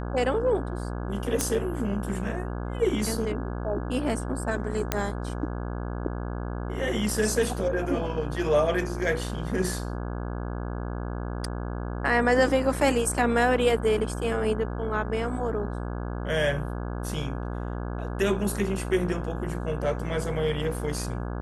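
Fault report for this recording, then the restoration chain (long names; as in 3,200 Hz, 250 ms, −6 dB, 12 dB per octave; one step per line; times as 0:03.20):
mains buzz 60 Hz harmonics 28 −32 dBFS
0:01.41: click −10 dBFS
0:04.92: click −8 dBFS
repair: click removal
hum removal 60 Hz, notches 28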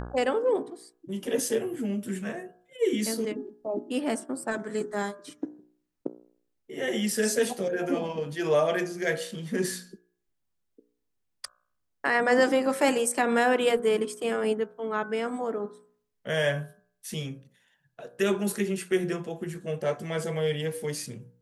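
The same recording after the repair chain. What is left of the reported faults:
none of them is left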